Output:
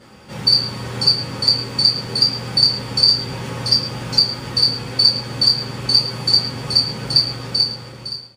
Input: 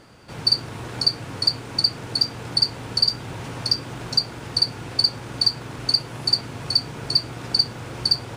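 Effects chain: ending faded out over 1.21 s; echo 0.11 s -15.5 dB; two-slope reverb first 0.27 s, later 2 s, from -28 dB, DRR -8.5 dB; gain -4 dB

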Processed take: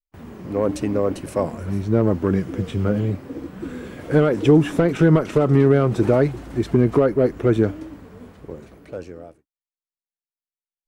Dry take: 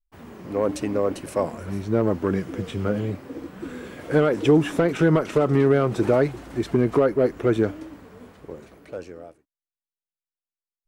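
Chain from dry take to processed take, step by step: gate with hold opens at -42 dBFS; low shelf 260 Hz +7.5 dB

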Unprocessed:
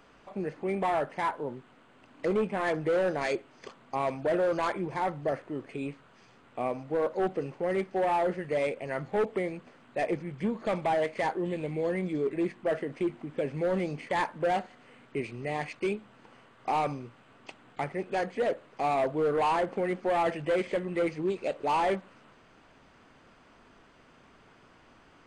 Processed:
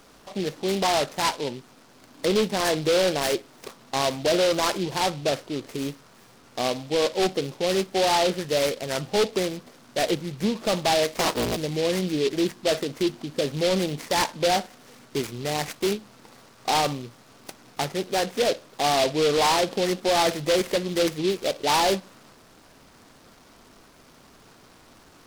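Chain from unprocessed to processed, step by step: 11.16–11.57 cycle switcher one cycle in 3, inverted; noise-modulated delay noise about 3300 Hz, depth 0.099 ms; gain +5.5 dB

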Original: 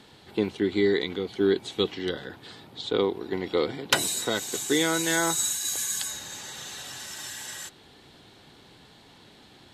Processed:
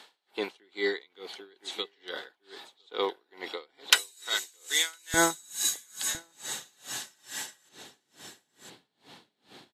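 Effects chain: HPF 660 Hz 12 dB/oct, from 3.92 s 1500 Hz, from 5.14 s 180 Hz; echo 1.008 s -13 dB; dB-linear tremolo 2.3 Hz, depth 32 dB; gain +4 dB

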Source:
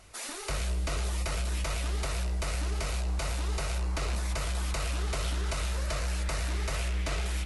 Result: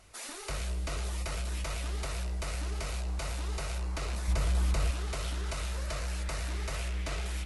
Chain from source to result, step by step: 4.28–4.91 low shelf 480 Hz +8 dB; gain -3.5 dB

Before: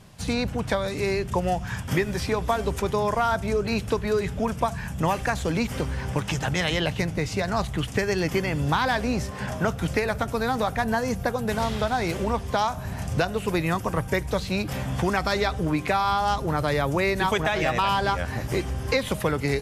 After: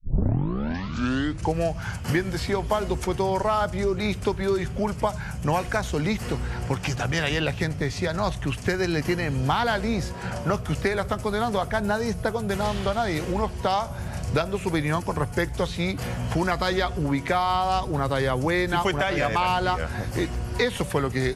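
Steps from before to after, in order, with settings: tape start at the beginning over 1.43 s; speed mistake 48 kHz file played as 44.1 kHz

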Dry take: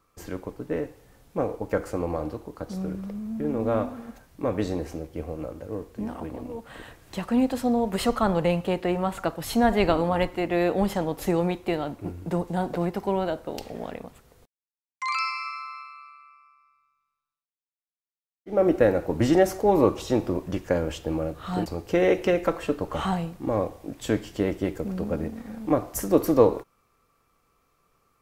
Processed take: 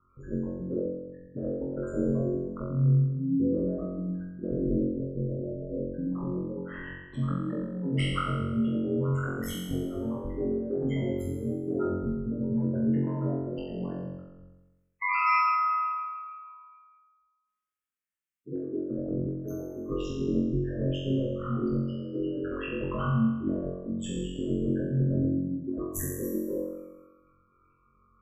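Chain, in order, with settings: spectral gate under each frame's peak -10 dB strong; LPF 2800 Hz 6 dB/oct; high shelf 2200 Hz +9 dB; notches 50/100/150/200/250/300/350/400/450 Hz; negative-ratio compressor -28 dBFS, ratio -0.5; fixed phaser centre 1800 Hz, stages 4; ring modulator 53 Hz; flutter echo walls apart 3.8 m, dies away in 1.1 s

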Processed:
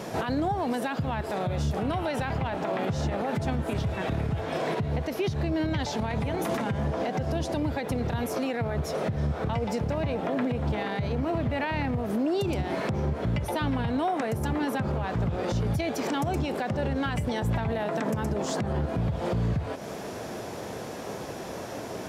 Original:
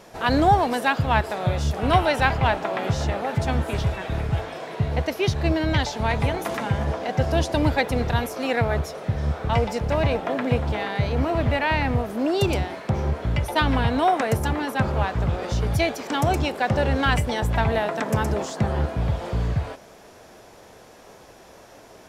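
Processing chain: HPF 110 Hz 12 dB/oct; low shelf 370 Hz +9.5 dB; compressor 10:1, threshold -29 dBFS, peak gain reduction 20 dB; limiter -28 dBFS, peak gain reduction 10.5 dB; gain +8 dB

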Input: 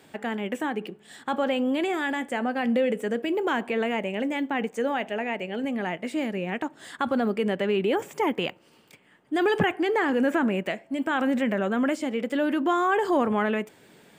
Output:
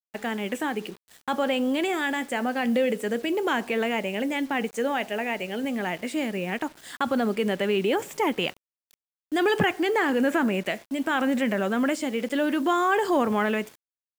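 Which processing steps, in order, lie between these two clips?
gate -43 dBFS, range -10 dB; high shelf 3100 Hz +6.5 dB; bit-crush 8-bit

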